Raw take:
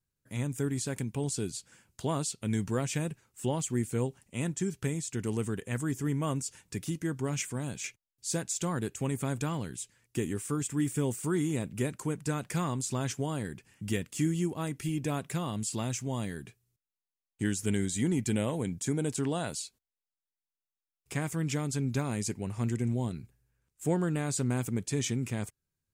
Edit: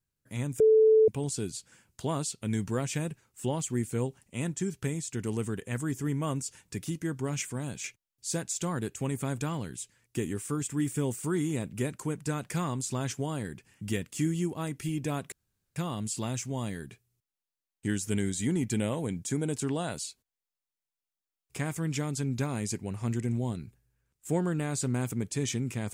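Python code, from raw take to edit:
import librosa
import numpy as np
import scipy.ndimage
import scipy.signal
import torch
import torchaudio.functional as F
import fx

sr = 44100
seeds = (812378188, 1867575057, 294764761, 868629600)

y = fx.edit(x, sr, fx.bleep(start_s=0.6, length_s=0.48, hz=438.0, db=-16.5),
    fx.insert_room_tone(at_s=15.32, length_s=0.44), tone=tone)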